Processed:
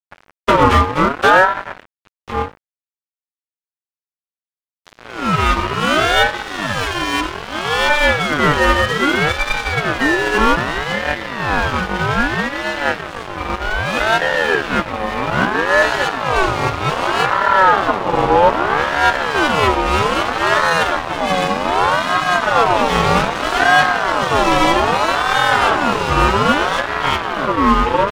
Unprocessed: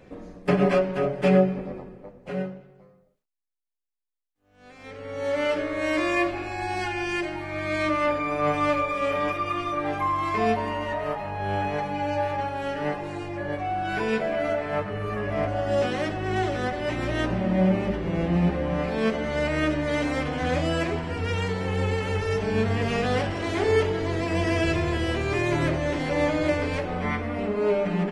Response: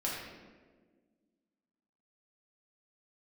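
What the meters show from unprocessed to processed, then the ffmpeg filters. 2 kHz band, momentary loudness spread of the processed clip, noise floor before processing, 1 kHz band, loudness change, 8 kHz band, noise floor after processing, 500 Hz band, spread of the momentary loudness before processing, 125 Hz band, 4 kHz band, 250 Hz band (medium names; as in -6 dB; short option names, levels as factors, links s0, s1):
+14.5 dB, 8 LU, -64 dBFS, +14.5 dB, +10.5 dB, +14.5 dB, under -85 dBFS, +6.5 dB, 7 LU, +3.5 dB, +15.5 dB, +4.5 dB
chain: -af "aeval=exprs='sgn(val(0))*max(abs(val(0))-0.02,0)':c=same,apsyclip=7.08,aeval=exprs='val(0)*sin(2*PI*910*n/s+910*0.3/0.63*sin(2*PI*0.63*n/s))':c=same,volume=0.841"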